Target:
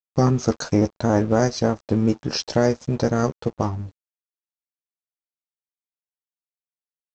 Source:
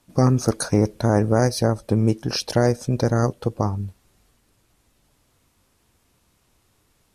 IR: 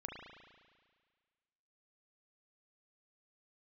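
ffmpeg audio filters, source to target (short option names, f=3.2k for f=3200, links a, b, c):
-filter_complex "[0:a]asplit=2[a][b];[b]adelay=13,volume=-7.5dB[c];[a][c]amix=inputs=2:normalize=0,aresample=16000,aeval=exprs='sgn(val(0))*max(abs(val(0))-0.0112,0)':c=same,aresample=44100"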